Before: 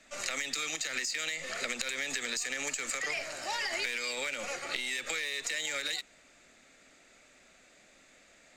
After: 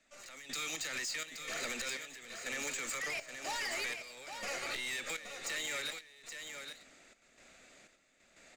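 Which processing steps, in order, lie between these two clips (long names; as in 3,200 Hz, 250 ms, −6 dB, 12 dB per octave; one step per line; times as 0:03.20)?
soft clipping −34 dBFS, distortion −10 dB
gate pattern "..xxx.xx" 61 BPM −12 dB
single-tap delay 823 ms −7.5 dB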